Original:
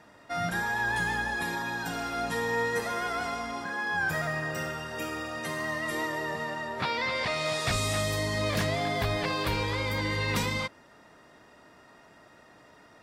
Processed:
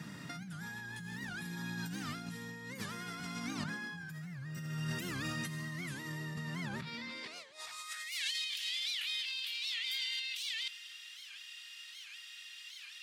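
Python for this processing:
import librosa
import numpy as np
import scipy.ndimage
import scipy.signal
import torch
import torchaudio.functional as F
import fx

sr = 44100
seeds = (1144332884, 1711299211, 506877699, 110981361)

p1 = fx.filter_sweep_highpass(x, sr, from_hz=160.0, to_hz=3000.0, start_s=6.89, end_s=8.28, q=4.2)
p2 = fx.over_compress(p1, sr, threshold_db=-39.0, ratio=-1.0)
p3 = fx.tone_stack(p2, sr, knobs='6-0-2')
p4 = p3 + fx.echo_single(p3, sr, ms=248, db=-19.5, dry=0)
p5 = fx.record_warp(p4, sr, rpm=78.0, depth_cents=250.0)
y = p5 * 10.0 ** (16.0 / 20.0)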